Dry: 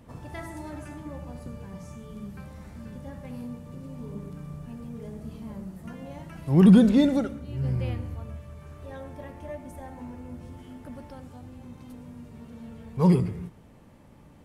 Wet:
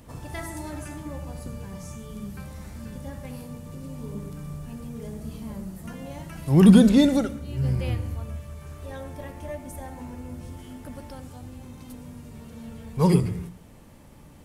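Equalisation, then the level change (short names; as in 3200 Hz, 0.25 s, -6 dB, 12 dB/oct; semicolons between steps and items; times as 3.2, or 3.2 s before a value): low shelf 70 Hz +6.5 dB; high shelf 3900 Hz +10 dB; notches 60/120/180/240 Hz; +2.0 dB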